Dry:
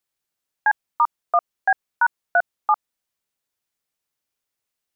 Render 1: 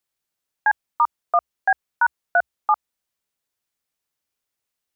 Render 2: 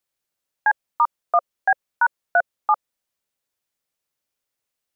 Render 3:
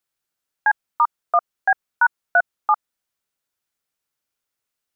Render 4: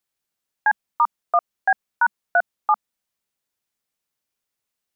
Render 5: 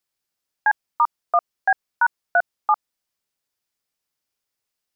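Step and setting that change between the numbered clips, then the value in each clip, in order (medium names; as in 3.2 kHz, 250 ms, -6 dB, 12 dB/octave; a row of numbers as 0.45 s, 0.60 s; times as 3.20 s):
peaking EQ, frequency: 65 Hz, 550 Hz, 1.4 kHz, 210 Hz, 5 kHz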